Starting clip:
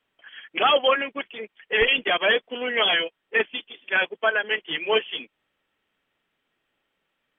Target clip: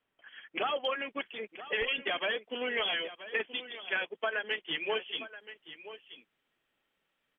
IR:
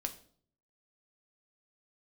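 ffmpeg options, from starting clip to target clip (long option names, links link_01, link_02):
-af "asetnsamples=nb_out_samples=441:pad=0,asendcmd='0.85 highshelf g 2',highshelf=frequency=3100:gain=-8,acompressor=threshold=-24dB:ratio=6,aecho=1:1:978:0.2,volume=-5dB"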